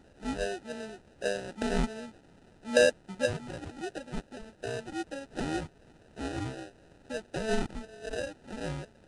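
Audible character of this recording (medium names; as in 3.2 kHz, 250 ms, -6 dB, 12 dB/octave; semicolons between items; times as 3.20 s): a quantiser's noise floor 10-bit, dither triangular; phasing stages 8, 2.6 Hz, lowest notch 560–1300 Hz; aliases and images of a low sample rate 1.1 kHz, jitter 0%; Nellymoser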